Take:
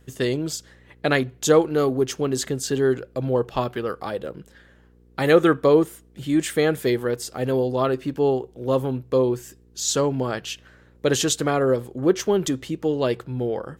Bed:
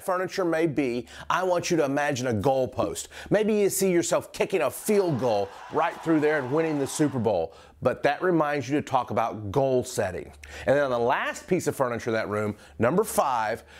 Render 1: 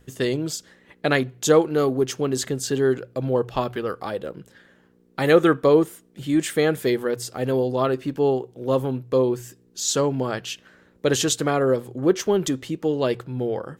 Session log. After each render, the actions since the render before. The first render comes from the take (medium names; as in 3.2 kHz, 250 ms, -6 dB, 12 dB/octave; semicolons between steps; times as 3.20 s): de-hum 60 Hz, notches 2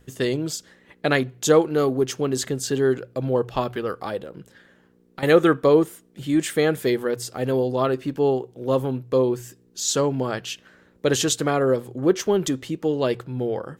4.22–5.23 s: compression, threshold -32 dBFS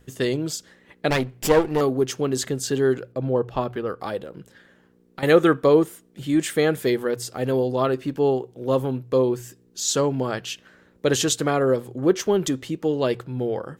1.10–1.81 s: comb filter that takes the minimum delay 0.38 ms; 3.12–4.00 s: treble shelf 2.2 kHz -8.5 dB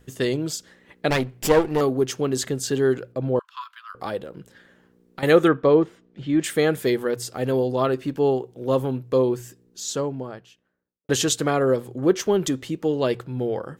3.39–3.95 s: rippled Chebyshev high-pass 980 Hz, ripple 6 dB; 5.48–6.44 s: distance through air 190 m; 9.22–11.09 s: studio fade out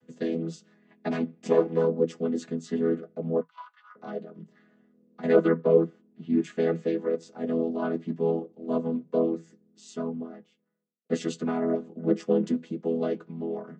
vocoder on a held chord major triad, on E3; flange 0.79 Hz, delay 8.7 ms, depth 1.4 ms, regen -46%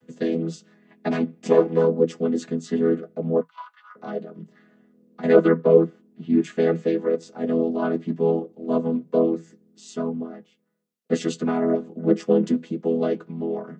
trim +5 dB